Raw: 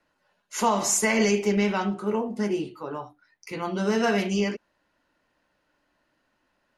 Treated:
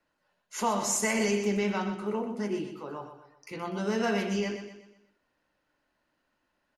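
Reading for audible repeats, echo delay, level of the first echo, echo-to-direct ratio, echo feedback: 4, 123 ms, -9.0 dB, -8.0 dB, 43%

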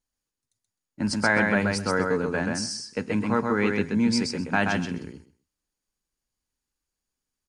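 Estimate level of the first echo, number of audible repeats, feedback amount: -3.5 dB, 2, 15%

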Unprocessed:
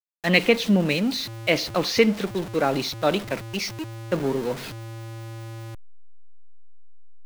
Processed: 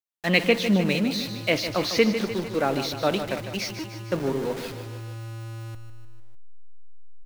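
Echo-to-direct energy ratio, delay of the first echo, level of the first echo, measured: -8.0 dB, 151 ms, -10.0 dB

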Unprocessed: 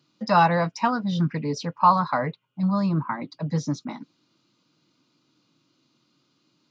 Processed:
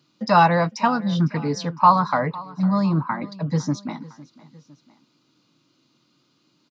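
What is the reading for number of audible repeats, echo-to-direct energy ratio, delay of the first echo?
2, -19.0 dB, 506 ms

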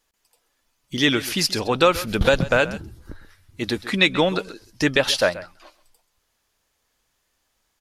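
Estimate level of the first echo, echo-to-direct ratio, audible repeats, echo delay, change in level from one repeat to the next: -16.5 dB, -16.5 dB, 1, 132 ms, no regular repeats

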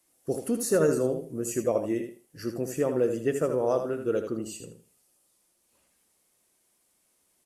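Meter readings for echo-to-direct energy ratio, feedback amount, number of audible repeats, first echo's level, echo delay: -8.0 dB, 21%, 2, -8.0 dB, 79 ms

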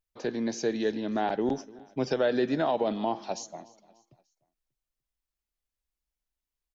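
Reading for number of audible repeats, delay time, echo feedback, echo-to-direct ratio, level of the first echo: 2, 295 ms, 44%, -20.5 dB, -21.5 dB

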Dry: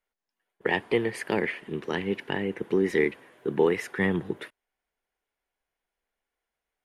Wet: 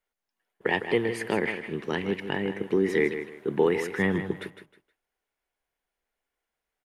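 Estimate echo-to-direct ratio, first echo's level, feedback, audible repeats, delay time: -9.5 dB, -10.0 dB, 26%, 3, 157 ms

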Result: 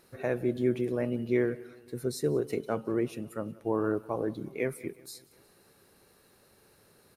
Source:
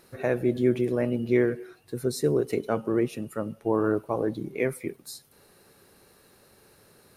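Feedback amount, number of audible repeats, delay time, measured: 59%, 3, 182 ms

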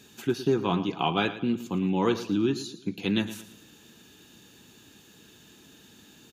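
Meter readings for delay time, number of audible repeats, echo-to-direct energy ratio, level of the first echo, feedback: 112 ms, 3, -13.5 dB, -14.0 dB, 39%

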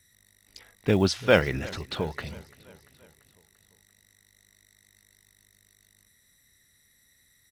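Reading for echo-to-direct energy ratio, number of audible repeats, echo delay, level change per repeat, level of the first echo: -20.0 dB, 3, 342 ms, -4.5 dB, -22.0 dB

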